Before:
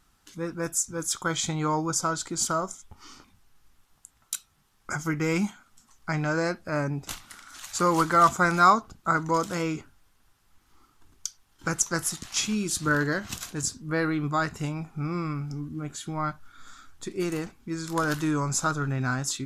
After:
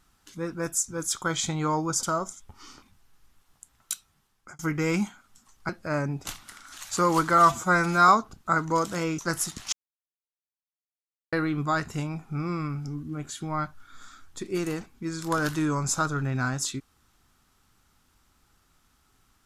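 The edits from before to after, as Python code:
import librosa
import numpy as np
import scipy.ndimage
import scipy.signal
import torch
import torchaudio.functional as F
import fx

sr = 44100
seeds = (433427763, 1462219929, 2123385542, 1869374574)

y = fx.edit(x, sr, fx.cut(start_s=2.03, length_s=0.42),
    fx.fade_out_span(start_s=4.34, length_s=0.67, curve='qsin'),
    fx.cut(start_s=6.11, length_s=0.4),
    fx.stretch_span(start_s=8.2, length_s=0.47, factor=1.5),
    fx.cut(start_s=9.77, length_s=2.07),
    fx.silence(start_s=12.38, length_s=1.6), tone=tone)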